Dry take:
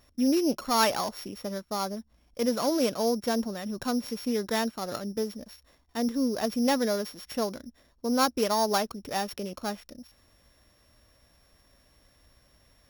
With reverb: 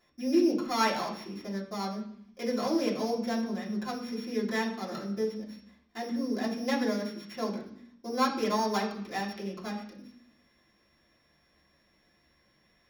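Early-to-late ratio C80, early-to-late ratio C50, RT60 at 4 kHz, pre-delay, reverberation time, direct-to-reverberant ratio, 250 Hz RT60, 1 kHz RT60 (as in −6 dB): 11.0 dB, 8.0 dB, 0.85 s, 3 ms, 0.65 s, −6.5 dB, 0.85 s, 0.70 s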